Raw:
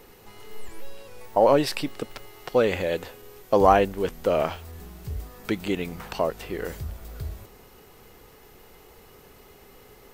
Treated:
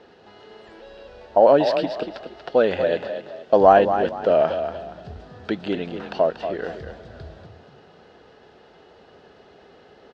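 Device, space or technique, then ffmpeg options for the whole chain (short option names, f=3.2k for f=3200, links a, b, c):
frequency-shifting delay pedal into a guitar cabinet: -filter_complex "[0:a]asplit=5[a][b][c][d][e];[b]adelay=236,afreqshift=31,volume=-9dB[f];[c]adelay=472,afreqshift=62,volume=-19.2dB[g];[d]adelay=708,afreqshift=93,volume=-29.3dB[h];[e]adelay=944,afreqshift=124,volume=-39.5dB[i];[a][f][g][h][i]amix=inputs=5:normalize=0,highpass=110,equalizer=f=120:t=q:w=4:g=-8,equalizer=f=650:t=q:w=4:g=7,equalizer=f=1.1k:t=q:w=4:g=-5,equalizer=f=1.6k:t=q:w=4:g=5,equalizer=f=2.2k:t=q:w=4:g=-9,lowpass=f=4.4k:w=0.5412,lowpass=f=4.4k:w=1.3066,volume=1.5dB"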